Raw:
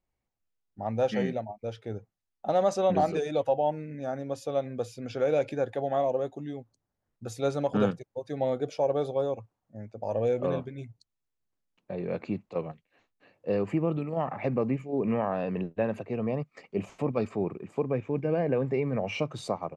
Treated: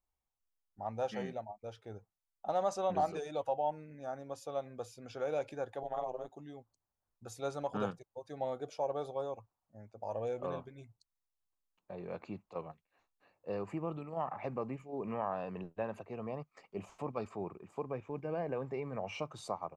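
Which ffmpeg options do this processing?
-filter_complex "[0:a]asettb=1/sr,asplit=3[s0][s1][s2];[s0]atrim=end=5.834[s3];[s1]atrim=start=5.83:end=6.31,asetpts=PTS-STARTPTS,afade=t=in:d=0.004:c=qsin,afade=t=out:st=0.476:d=0.004:c=qsin,tremolo=f=120:d=0.947[s4];[s2]atrim=start=6.306[s5];[s3][s4]acrossfade=d=0.004:c1=hsin:c2=qsin[s6];[s6][s5]acrossfade=d=0.004:c1=qsin:c2=hsin,asettb=1/sr,asplit=3[s7][s8][s9];[s7]atrim=end=12.694[s10];[s8]atrim=start=12.69:end=13.74,asetpts=PTS-STARTPTS,afade=t=in:d=0.004:c=qsin,afade=t=out:st=1.046:d=0.004:c=qsin,bandreject=f=3100:w=9.8[s11];[s9]atrim=start=13.736[s12];[s10][s11]acrossfade=d=0.004:c1=hsin:c2=qsin[s13];[s13][s12]acrossfade=d=0.004:c1=qsin:c2=hsin,equalizer=f=125:t=o:w=1:g=-7,equalizer=f=250:t=o:w=1:g=-7,equalizer=f=500:t=o:w=1:g=-5,equalizer=f=1000:t=o:w=1:g=4,equalizer=f=2000:t=o:w=1:g=-6,equalizer=f=4000:t=o:w=1:g=-3,volume=0.596"

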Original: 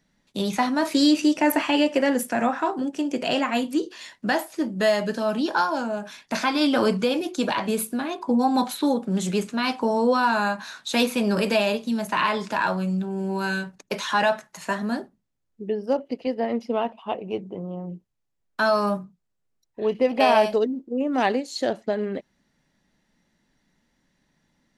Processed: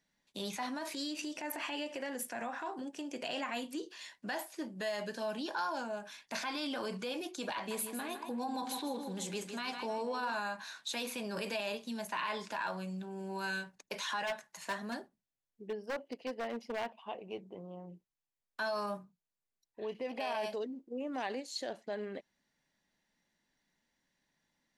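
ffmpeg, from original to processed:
-filter_complex "[0:a]asettb=1/sr,asplit=3[s0][s1][s2];[s0]atrim=end=0.784[s3];[s1]atrim=start=0.78:end=3.09,asetpts=PTS-STARTPTS,afade=t=in:d=0.004:c=qsin,afade=t=out:st=2.306:d=0.004:c=qsin,acompressor=threshold=0.0708:ratio=6:attack=3.2:release=140:knee=1:detection=peak[s4];[s2]atrim=start=3.086[s5];[s3][s4]acrossfade=d=0.004:c1=hsin:c2=qsin[s6];[s6][s5]acrossfade=d=0.004:c1=qsin:c2=hsin,asettb=1/sr,asplit=3[s7][s8][s9];[s7]atrim=end=7.554[s10];[s8]atrim=start=7.55:end=10.35,asetpts=PTS-STARTPTS,afade=t=in:d=0.004:c=qsin,afade=t=out:st=2.796:d=0.004:c=qsin,aecho=1:1:156|312|468|624|780:0.316|0.136|0.0585|0.0251|0.0108,atrim=end_sample=123480[s11];[s9]atrim=start=10.346[s12];[s10][s11]acrossfade=d=0.004:c1=hsin:c2=qsin[s13];[s13][s12]acrossfade=d=0.004:c1=qsin:c2=hsin,asplit=3[s14][s15][s16];[s14]afade=t=out:st=14.26:d=0.02[s17];[s15]aeval=exprs='0.119*(abs(mod(val(0)/0.119+3,4)-2)-1)':c=same,afade=t=in:st=14.26:d=0.02,afade=t=out:st=17.01:d=0.02[s18];[s16]afade=t=in:st=17.01:d=0.02[s19];[s17][s18][s19]amix=inputs=3:normalize=0,bandreject=f=1300:w=12,alimiter=limit=0.126:level=0:latency=1:release=39,lowshelf=f=440:g=-10,volume=0.422"

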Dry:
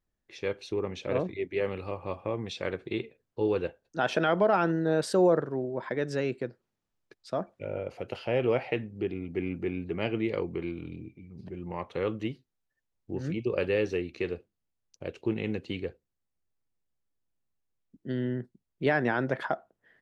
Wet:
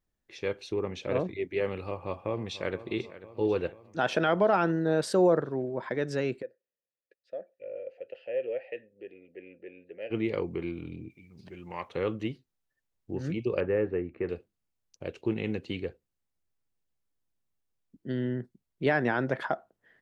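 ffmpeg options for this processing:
-filter_complex "[0:a]asplit=2[s0][s1];[s1]afade=t=in:st=1.82:d=0.01,afade=t=out:st=2.8:d=0.01,aecho=0:1:490|980|1470|1960|2450|2940|3430:0.16788|0.109122|0.0709295|0.0461042|0.0299677|0.019479|0.0126614[s2];[s0][s2]amix=inputs=2:normalize=0,asplit=3[s3][s4][s5];[s3]afade=t=out:st=6.41:d=0.02[s6];[s4]asplit=3[s7][s8][s9];[s7]bandpass=f=530:t=q:w=8,volume=1[s10];[s8]bandpass=f=1840:t=q:w=8,volume=0.501[s11];[s9]bandpass=f=2480:t=q:w=8,volume=0.355[s12];[s10][s11][s12]amix=inputs=3:normalize=0,afade=t=in:st=6.41:d=0.02,afade=t=out:st=10.1:d=0.02[s13];[s5]afade=t=in:st=10.1:d=0.02[s14];[s6][s13][s14]amix=inputs=3:normalize=0,asettb=1/sr,asplit=3[s15][s16][s17];[s15]atrim=end=11.104[s18];[s16]atrim=start=11.1:end=11.89,asetpts=PTS-STARTPTS,afade=t=in:d=0.004:c=qsin,afade=t=out:st=0.786:d=0.004:c=qsin,tiltshelf=f=970:g=-7.5[s19];[s17]atrim=start=11.886[s20];[s18][s19]acrossfade=d=0.004:c1=hsin:c2=qsin[s21];[s21][s20]acrossfade=d=0.004:c1=qsin:c2=hsin,asettb=1/sr,asplit=3[s22][s23][s24];[s22]atrim=end=13.604[s25];[s23]atrim=start=13.6:end=14.29,asetpts=PTS-STARTPTS,afade=t=in:d=0.004:c=qsin,afade=t=out:st=0.686:d=0.004:c=qsin,lowpass=f=1800:w=0.5412,lowpass=f=1800:w=1.3066[s26];[s24]atrim=start=14.286[s27];[s25][s26]acrossfade=d=0.004:c1=hsin:c2=qsin[s28];[s28][s27]acrossfade=d=0.004:c1=qsin:c2=hsin"

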